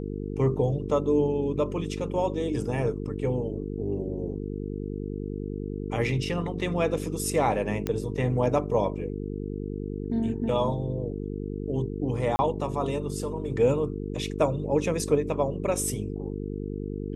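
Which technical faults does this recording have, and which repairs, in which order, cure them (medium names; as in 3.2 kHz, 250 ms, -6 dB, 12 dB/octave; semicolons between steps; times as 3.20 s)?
buzz 50 Hz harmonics 9 -33 dBFS
7.87 s: pop -14 dBFS
12.36–12.39 s: dropout 30 ms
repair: de-click; de-hum 50 Hz, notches 9; interpolate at 12.36 s, 30 ms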